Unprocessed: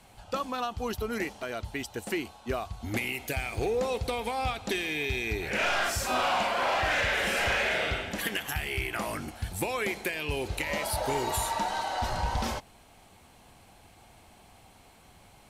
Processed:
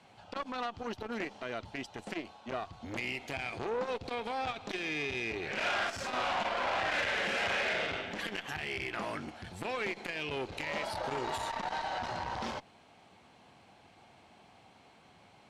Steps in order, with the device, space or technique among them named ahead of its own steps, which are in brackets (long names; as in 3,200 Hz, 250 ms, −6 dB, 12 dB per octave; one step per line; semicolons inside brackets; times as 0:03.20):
valve radio (band-pass filter 130–4,700 Hz; tube saturation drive 24 dB, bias 0.5; saturating transformer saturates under 880 Hz)